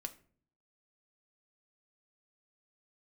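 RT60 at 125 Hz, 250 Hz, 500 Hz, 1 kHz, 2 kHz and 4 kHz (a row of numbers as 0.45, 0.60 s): 0.85, 0.75, 0.55, 0.40, 0.40, 0.30 s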